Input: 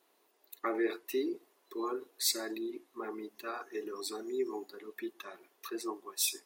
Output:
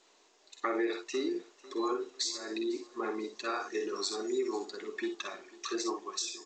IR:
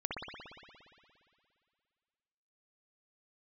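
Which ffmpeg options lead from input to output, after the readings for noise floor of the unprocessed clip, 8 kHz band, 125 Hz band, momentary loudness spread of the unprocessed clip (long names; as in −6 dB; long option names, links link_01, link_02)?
−72 dBFS, −2.0 dB, can't be measured, 14 LU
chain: -filter_complex "[0:a]asplit=2[link_01][link_02];[link_02]aecho=0:1:49|60:0.335|0.335[link_03];[link_01][link_03]amix=inputs=2:normalize=0,crystalizer=i=2.5:c=0,acompressor=threshold=-31dB:ratio=16,asplit=2[link_04][link_05];[link_05]aecho=0:1:498|996|1494:0.0891|0.0348|0.0136[link_06];[link_04][link_06]amix=inputs=2:normalize=0,volume=4dB" -ar 16000 -c:a g722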